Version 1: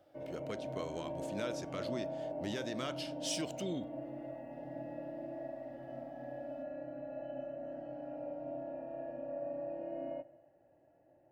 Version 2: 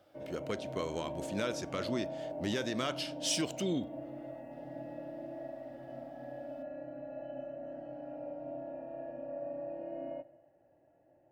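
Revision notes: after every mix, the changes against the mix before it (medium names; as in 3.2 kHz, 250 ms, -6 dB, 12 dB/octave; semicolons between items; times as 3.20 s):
speech +5.5 dB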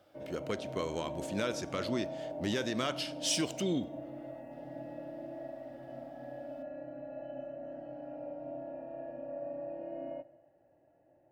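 speech: send on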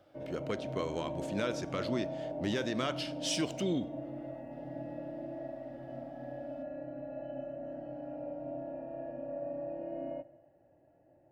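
speech: add treble shelf 6.5 kHz -8.5 dB; background: add bass shelf 300 Hz +6 dB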